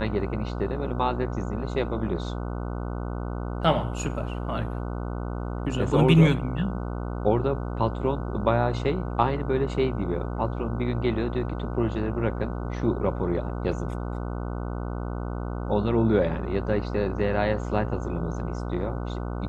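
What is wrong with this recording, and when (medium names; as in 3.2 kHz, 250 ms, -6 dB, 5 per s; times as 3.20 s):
buzz 60 Hz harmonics 25 -31 dBFS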